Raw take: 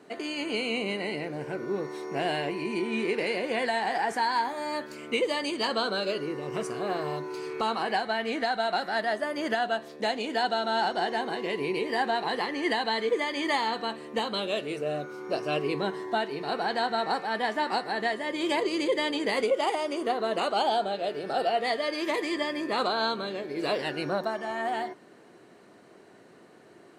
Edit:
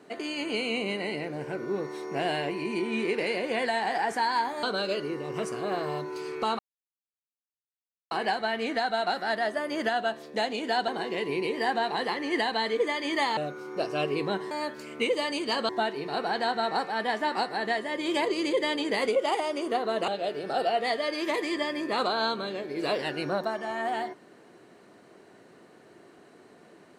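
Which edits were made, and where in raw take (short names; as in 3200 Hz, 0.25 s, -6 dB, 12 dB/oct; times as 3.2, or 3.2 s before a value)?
4.63–5.81 move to 16.04
7.77 insert silence 1.52 s
10.54–11.2 cut
13.69–14.9 cut
20.43–20.88 cut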